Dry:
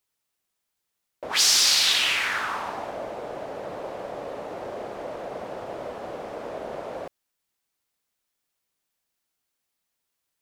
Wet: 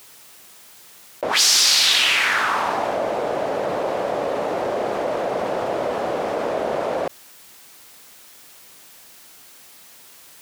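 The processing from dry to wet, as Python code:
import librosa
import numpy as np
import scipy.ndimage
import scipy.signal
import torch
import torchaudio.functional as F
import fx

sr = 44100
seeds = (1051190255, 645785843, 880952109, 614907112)

y = fx.low_shelf(x, sr, hz=78.0, db=-11.5)
y = fx.env_flatten(y, sr, amount_pct=50)
y = F.gain(torch.from_numpy(y), 3.0).numpy()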